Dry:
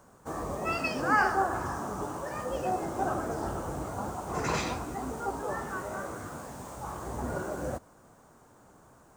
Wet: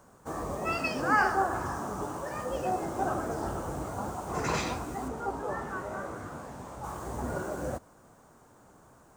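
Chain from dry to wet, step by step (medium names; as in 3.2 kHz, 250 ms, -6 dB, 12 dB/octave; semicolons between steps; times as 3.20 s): 5.08–6.84 s: treble shelf 5.2 kHz -9.5 dB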